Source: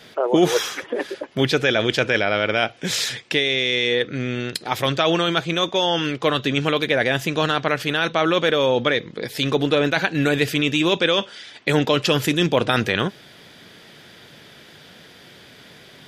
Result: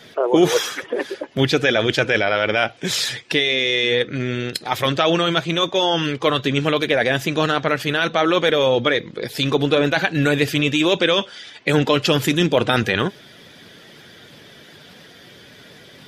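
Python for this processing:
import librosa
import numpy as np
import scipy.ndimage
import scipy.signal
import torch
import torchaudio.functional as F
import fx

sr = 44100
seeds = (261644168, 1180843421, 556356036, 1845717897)

y = fx.spec_quant(x, sr, step_db=15)
y = y * 10.0 ** (2.0 / 20.0)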